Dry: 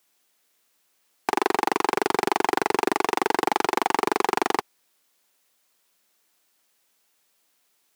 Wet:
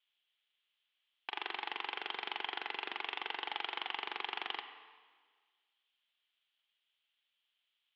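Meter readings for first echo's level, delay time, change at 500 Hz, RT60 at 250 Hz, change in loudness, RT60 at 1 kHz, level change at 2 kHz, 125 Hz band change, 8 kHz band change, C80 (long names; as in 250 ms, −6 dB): no echo audible, no echo audible, −26.0 dB, 1.6 s, −15.5 dB, 1.6 s, −12.0 dB, below −30 dB, below −35 dB, 10.0 dB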